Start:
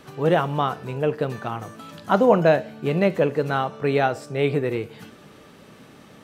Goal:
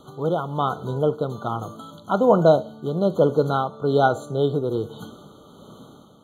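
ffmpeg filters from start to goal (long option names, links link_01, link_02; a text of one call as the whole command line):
ffmpeg -i in.wav -af "dynaudnorm=framelen=120:gausssize=11:maxgain=6dB,tremolo=f=1.2:d=0.46,afftfilt=real='re*eq(mod(floor(b*sr/1024/1500),2),0)':imag='im*eq(mod(floor(b*sr/1024/1500),2),0)':win_size=1024:overlap=0.75" out.wav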